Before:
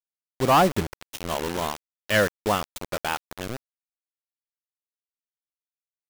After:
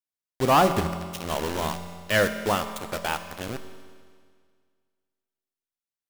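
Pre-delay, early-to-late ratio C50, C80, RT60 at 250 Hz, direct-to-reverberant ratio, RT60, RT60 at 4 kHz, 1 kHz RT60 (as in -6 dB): 5 ms, 10.0 dB, 10.5 dB, 1.9 s, 8.0 dB, 1.9 s, 1.9 s, 1.9 s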